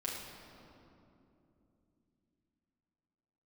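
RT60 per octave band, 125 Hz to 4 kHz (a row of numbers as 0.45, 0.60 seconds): 4.2, 4.4, 3.3, 2.6, 2.0, 1.6 seconds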